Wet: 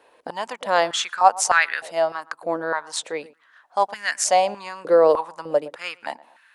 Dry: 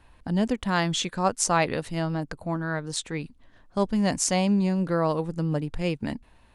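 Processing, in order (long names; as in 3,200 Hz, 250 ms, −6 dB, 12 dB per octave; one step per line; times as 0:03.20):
feedback echo with a low-pass in the loop 115 ms, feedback 39%, low-pass 1,100 Hz, level −18.5 dB
high-pass on a step sequencer 3.3 Hz 470–1,600 Hz
level +2.5 dB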